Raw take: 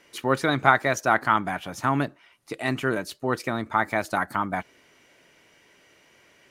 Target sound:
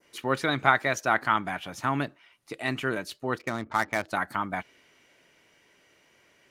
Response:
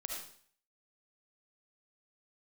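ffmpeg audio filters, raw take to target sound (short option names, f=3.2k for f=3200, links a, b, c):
-filter_complex "[0:a]adynamicequalizer=threshold=0.01:dfrequency=2900:dqfactor=0.84:tfrequency=2900:tqfactor=0.84:attack=5:release=100:ratio=0.375:range=2.5:mode=boostabove:tftype=bell,asplit=3[a][b][c];[a]afade=t=out:st=3.37:d=0.02[d];[b]adynamicsmooth=sensitivity=4.5:basefreq=730,afade=t=in:st=3.37:d=0.02,afade=t=out:st=4.08:d=0.02[e];[c]afade=t=in:st=4.08:d=0.02[f];[d][e][f]amix=inputs=3:normalize=0,volume=-4.5dB"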